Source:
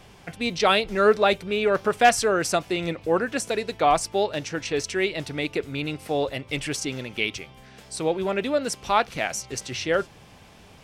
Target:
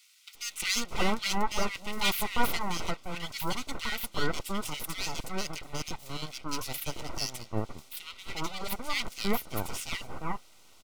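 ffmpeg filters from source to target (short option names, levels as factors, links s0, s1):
-filter_complex "[0:a]highpass=f=1100:p=1,aeval=exprs='abs(val(0))':c=same,asuperstop=centerf=1700:order=12:qfactor=5.7,acrossover=split=1700[s0][s1];[s0]adelay=350[s2];[s2][s1]amix=inputs=2:normalize=0"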